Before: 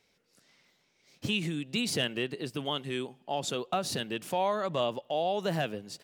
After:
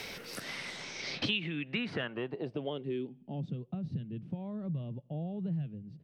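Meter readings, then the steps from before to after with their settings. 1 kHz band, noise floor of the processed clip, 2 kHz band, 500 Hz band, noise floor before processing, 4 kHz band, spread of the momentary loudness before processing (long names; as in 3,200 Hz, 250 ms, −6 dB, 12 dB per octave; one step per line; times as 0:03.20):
−16.0 dB, −58 dBFS, −2.0 dB, −8.5 dB, −72 dBFS, −5.0 dB, 6 LU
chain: parametric band 2,700 Hz +4.5 dB 2.7 octaves
notch filter 7,100 Hz, Q 6.5
low-pass filter sweep 15,000 Hz → 140 Hz, 0:00.34–0:03.58
multiband upward and downward compressor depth 100%
level −4 dB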